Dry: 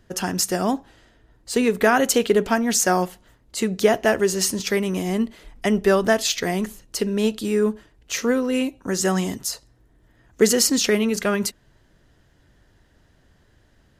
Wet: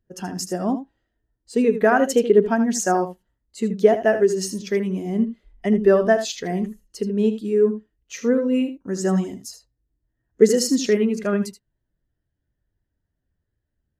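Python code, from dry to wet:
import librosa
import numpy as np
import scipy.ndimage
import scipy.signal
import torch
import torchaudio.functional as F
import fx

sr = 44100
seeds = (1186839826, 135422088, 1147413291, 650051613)

p1 = x + fx.echo_single(x, sr, ms=79, db=-8.0, dry=0)
p2 = fx.spectral_expand(p1, sr, expansion=1.5)
y = F.gain(torch.from_numpy(p2), 2.0).numpy()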